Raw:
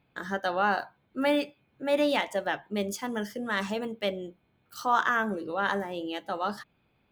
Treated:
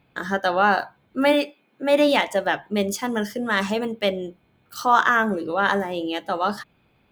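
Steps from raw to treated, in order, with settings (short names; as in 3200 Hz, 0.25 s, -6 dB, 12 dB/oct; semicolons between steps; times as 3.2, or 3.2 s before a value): 1.32–2.07 HPF 300 Hz -> 130 Hz 24 dB/oct; gain +7.5 dB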